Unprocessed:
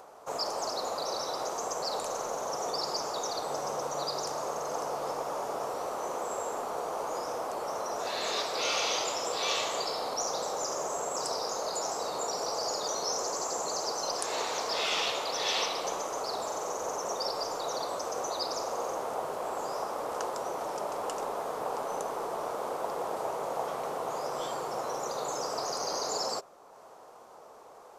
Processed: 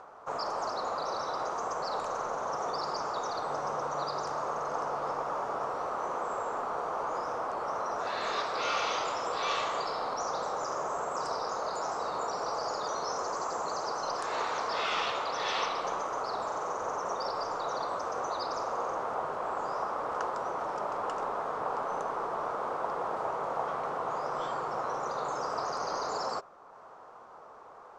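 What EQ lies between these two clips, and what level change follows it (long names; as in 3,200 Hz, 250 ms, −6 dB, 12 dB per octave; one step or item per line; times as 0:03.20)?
low-pass filter 6,100 Hz 12 dB per octave
low-shelf EQ 290 Hz +11 dB
parametric band 1,300 Hz +12.5 dB 1.5 octaves
−7.5 dB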